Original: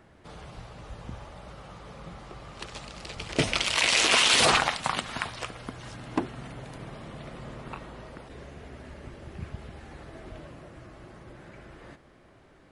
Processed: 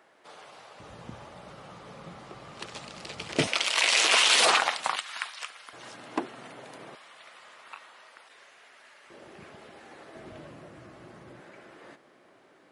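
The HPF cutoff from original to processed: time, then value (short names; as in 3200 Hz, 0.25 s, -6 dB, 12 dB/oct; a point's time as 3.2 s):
500 Hz
from 0.8 s 140 Hz
from 3.47 s 440 Hz
from 4.96 s 1300 Hz
from 5.73 s 330 Hz
from 6.95 s 1200 Hz
from 9.1 s 330 Hz
from 10.16 s 130 Hz
from 11.4 s 280 Hz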